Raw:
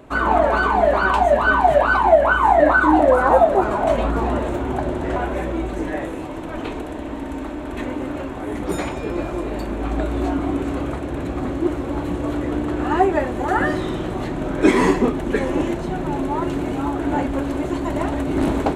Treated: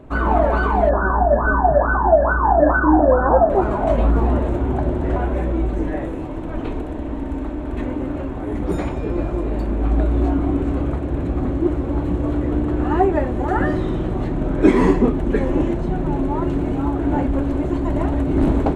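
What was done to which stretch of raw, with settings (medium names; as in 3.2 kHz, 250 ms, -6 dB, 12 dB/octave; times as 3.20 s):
0.89–3.50 s: brick-wall FIR low-pass 1.8 kHz
whole clip: tilt EQ -2.5 dB/octave; trim -2.5 dB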